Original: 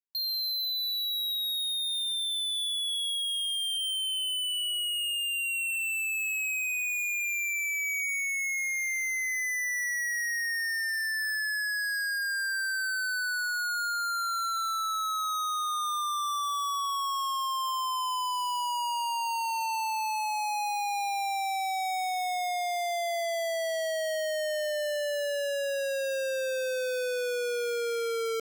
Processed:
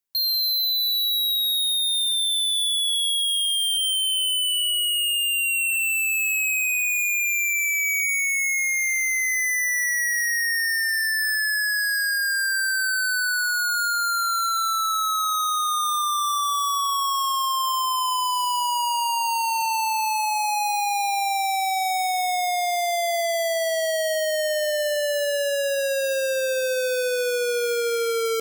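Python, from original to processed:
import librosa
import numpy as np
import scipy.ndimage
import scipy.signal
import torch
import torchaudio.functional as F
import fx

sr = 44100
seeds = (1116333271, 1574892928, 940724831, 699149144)

y = fx.high_shelf(x, sr, hz=6900.0, db=6.0)
y = y + 10.0 ** (-18.5 / 20.0) * np.pad(y, (int(353 * sr / 1000.0), 0))[:len(y)]
y = y * 10.0 ** (6.5 / 20.0)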